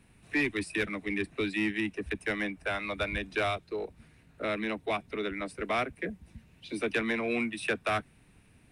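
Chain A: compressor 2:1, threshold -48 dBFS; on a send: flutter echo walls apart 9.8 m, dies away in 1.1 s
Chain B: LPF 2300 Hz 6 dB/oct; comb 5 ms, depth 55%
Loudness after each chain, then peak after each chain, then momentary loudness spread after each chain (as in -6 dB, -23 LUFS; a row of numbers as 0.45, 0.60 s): -40.5, -32.5 LUFS; -27.0, -18.0 dBFS; 8, 7 LU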